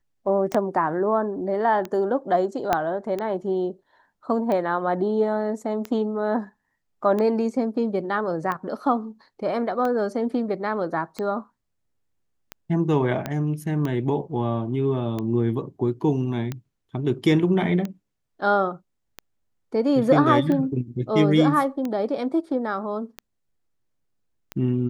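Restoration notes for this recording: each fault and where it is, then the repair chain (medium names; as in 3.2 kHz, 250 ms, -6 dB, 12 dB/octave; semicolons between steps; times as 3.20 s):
tick 45 rpm -16 dBFS
0.54–0.55 s: dropout 5.3 ms
2.73 s: pop -7 dBFS
13.26 s: pop -13 dBFS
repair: de-click; interpolate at 0.54 s, 5.3 ms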